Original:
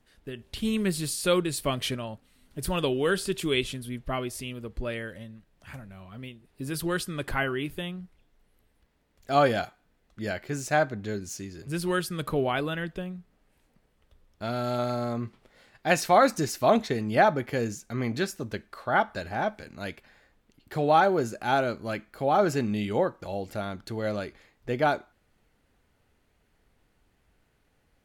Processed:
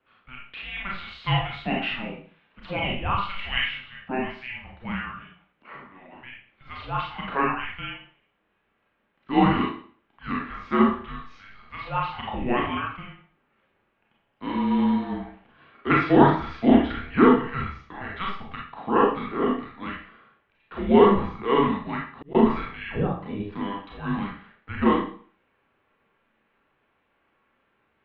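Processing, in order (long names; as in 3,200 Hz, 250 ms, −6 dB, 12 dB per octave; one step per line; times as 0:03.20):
single-sideband voice off tune −390 Hz 570–3,400 Hz
four-comb reverb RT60 0.46 s, combs from 28 ms, DRR −3 dB
0:21.73–0:22.35: volume swells 667 ms
level +1.5 dB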